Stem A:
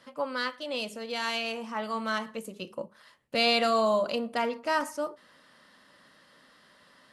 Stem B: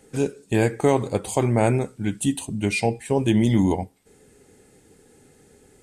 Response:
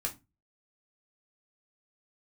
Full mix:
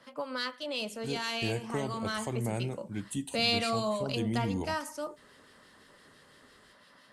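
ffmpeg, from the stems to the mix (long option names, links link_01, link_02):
-filter_complex "[0:a]acrossover=split=1700[link_01][link_02];[link_01]aeval=exprs='val(0)*(1-0.5/2+0.5/2*cos(2*PI*5.9*n/s))':channel_layout=same[link_03];[link_02]aeval=exprs='val(0)*(1-0.5/2-0.5/2*cos(2*PI*5.9*n/s))':channel_layout=same[link_04];[link_03][link_04]amix=inputs=2:normalize=0,volume=2dB[link_05];[1:a]adelay=900,volume=-11.5dB[link_06];[link_05][link_06]amix=inputs=2:normalize=0,acrossover=split=220|3000[link_07][link_08][link_09];[link_08]acompressor=threshold=-36dB:ratio=2[link_10];[link_07][link_10][link_09]amix=inputs=3:normalize=0"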